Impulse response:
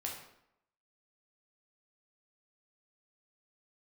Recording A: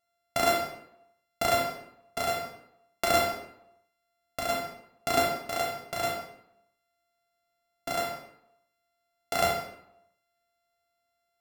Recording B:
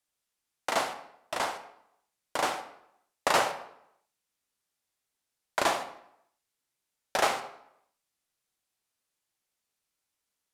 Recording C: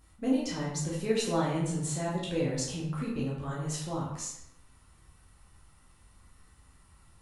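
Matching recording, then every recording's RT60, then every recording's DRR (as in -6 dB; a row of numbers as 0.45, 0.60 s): A; 0.80, 0.75, 0.80 s; -2.0, 7.0, -6.5 dB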